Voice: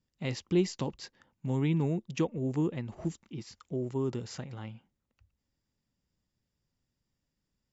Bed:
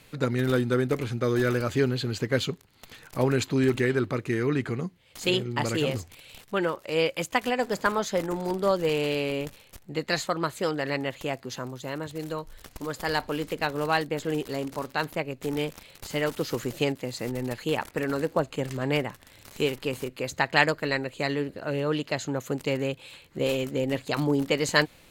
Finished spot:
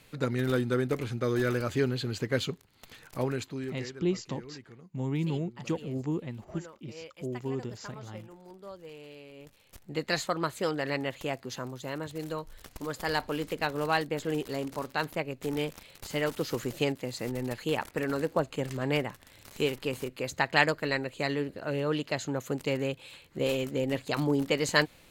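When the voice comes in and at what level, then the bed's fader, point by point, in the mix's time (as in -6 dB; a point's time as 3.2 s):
3.50 s, -2.0 dB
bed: 3.09 s -3.5 dB
4.03 s -21 dB
9.33 s -21 dB
9.8 s -2.5 dB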